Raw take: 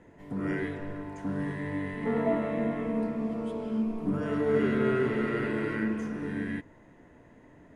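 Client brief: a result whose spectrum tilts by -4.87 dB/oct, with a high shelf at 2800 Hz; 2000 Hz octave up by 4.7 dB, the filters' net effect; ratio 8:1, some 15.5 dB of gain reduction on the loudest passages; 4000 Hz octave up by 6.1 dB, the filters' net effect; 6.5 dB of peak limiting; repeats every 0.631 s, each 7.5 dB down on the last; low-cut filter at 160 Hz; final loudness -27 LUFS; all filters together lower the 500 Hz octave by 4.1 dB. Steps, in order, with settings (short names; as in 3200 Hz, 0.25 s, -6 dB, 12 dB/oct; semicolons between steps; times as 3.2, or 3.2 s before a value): HPF 160 Hz; bell 500 Hz -5.5 dB; bell 2000 Hz +3.5 dB; high shelf 2800 Hz +4.5 dB; bell 4000 Hz +3.5 dB; compressor 8:1, threshold -41 dBFS; limiter -36.5 dBFS; feedback echo 0.631 s, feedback 42%, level -7.5 dB; gain +18 dB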